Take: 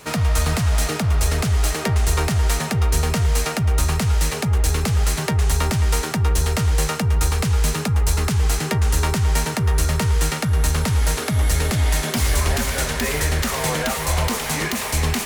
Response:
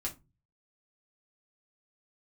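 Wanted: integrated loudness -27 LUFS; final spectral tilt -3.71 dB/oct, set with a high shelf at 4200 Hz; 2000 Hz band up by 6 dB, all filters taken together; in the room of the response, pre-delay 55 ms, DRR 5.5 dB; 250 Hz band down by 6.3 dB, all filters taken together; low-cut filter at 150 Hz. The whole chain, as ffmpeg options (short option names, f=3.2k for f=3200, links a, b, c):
-filter_complex "[0:a]highpass=150,equalizer=f=250:t=o:g=-7.5,equalizer=f=2k:t=o:g=8,highshelf=f=4.2k:g=-4,asplit=2[a][b];[1:a]atrim=start_sample=2205,adelay=55[c];[b][c]afir=irnorm=-1:irlink=0,volume=-6.5dB[d];[a][d]amix=inputs=2:normalize=0,volume=-5dB"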